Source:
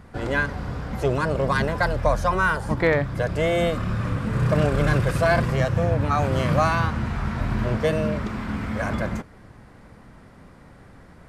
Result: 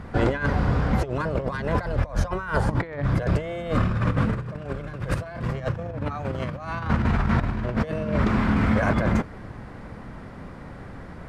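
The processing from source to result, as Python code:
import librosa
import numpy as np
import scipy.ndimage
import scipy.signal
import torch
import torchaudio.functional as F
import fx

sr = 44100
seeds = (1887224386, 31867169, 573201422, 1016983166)

y = fx.lowpass(x, sr, hz=3200.0, slope=6)
y = fx.over_compress(y, sr, threshold_db=-27.0, ratio=-0.5)
y = y * librosa.db_to_amplitude(3.5)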